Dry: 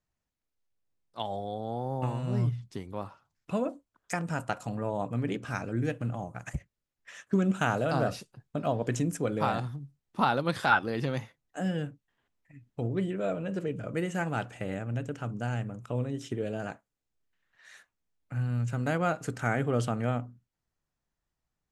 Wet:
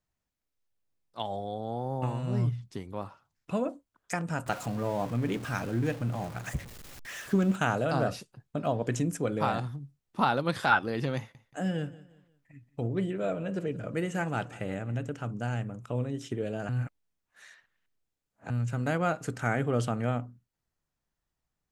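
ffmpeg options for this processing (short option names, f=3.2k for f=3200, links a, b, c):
-filter_complex "[0:a]asettb=1/sr,asplit=3[a][b][c];[a]atrim=end=4.464[d];[b]atrim=start=4.46:end=7.56,asetpts=PTS-STARTPTS,afade=t=in:d=0.004:c=qsin,afade=t=out:st=3.096:d=0.004:c=qsin,aeval=exprs='val(0)+0.5*0.0112*sgn(val(0))':c=same[e];[c]atrim=start=7.556[f];[d][e]acrossfade=d=0.004:c1=hsin:c2=qsin[g];[g][f]acrossfade=d=0.004:c1=qsin:c2=hsin,asettb=1/sr,asplit=3[h][i][j];[h]atrim=end=11.174[k];[i]atrim=start=11.17:end=15.1,asetpts=PTS-STARTPTS,afade=t=in:d=0.004:c=qsin,afade=t=out:st=3.926:d=0.004:c=qsin,aecho=1:1:177|354|531:0.112|0.0404|0.0145,atrim=end_sample=173313[l];[j]atrim=start=15.096[m];[k][l]acrossfade=d=0.004:c1=hsin:c2=qsin[n];[n][m]acrossfade=d=0.004:c1=qsin:c2=hsin,asplit=3[o][p][q];[o]atrim=end=16.692[r];[p]atrim=start=16.688:end=18.502,asetpts=PTS-STARTPTS,areverse[s];[q]atrim=start=18.498[t];[r][s]acrossfade=d=0.004:c1=hsin:c2=hsin[u];[u][t]acrossfade=d=0.004:c1=hsin:c2=hsin"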